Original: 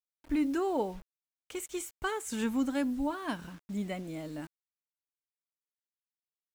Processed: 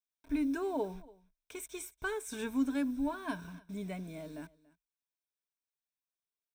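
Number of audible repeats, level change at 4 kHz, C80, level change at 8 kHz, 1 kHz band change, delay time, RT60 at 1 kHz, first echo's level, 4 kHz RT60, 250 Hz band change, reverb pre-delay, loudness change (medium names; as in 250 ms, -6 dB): 1, -5.5 dB, no reverb, -4.0 dB, -5.5 dB, 284 ms, no reverb, -22.5 dB, no reverb, -2.5 dB, no reverb, -2.5 dB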